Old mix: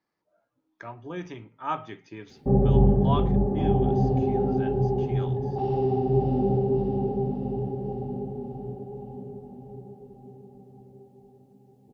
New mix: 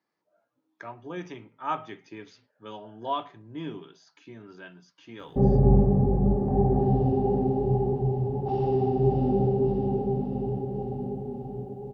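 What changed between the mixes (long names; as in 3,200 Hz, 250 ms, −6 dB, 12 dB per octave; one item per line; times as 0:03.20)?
speech: add Bessel high-pass filter 160 Hz
background: entry +2.90 s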